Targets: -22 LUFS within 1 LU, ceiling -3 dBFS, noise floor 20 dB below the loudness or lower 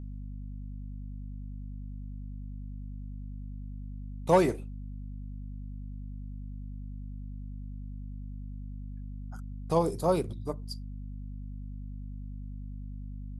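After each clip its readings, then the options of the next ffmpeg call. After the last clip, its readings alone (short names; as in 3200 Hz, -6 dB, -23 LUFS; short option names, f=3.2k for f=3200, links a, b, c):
hum 50 Hz; harmonics up to 250 Hz; hum level -37 dBFS; loudness -36.0 LUFS; peak -11.0 dBFS; loudness target -22.0 LUFS
-> -af "bandreject=f=50:t=h:w=6,bandreject=f=100:t=h:w=6,bandreject=f=150:t=h:w=6,bandreject=f=200:t=h:w=6,bandreject=f=250:t=h:w=6"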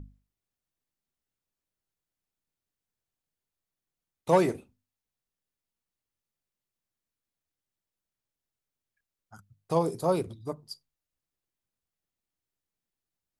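hum none; loudness -28.0 LUFS; peak -11.0 dBFS; loudness target -22.0 LUFS
-> -af "volume=6dB"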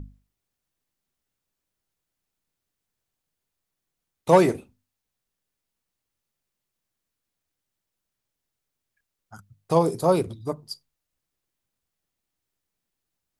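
loudness -22.0 LUFS; peak -5.0 dBFS; noise floor -84 dBFS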